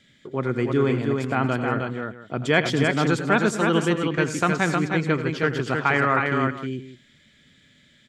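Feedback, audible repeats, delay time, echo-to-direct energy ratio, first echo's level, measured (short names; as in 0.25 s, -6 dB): no steady repeat, 4, 84 ms, -3.0 dB, -14.0 dB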